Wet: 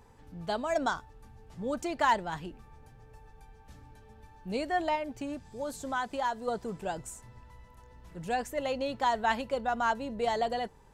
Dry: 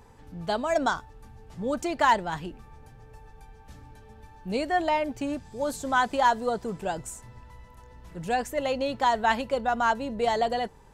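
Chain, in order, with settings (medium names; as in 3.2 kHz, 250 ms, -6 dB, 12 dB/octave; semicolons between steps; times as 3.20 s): 4.95–6.48 s: compression 1.5:1, threshold -32 dBFS, peak gain reduction 5.5 dB; trim -4.5 dB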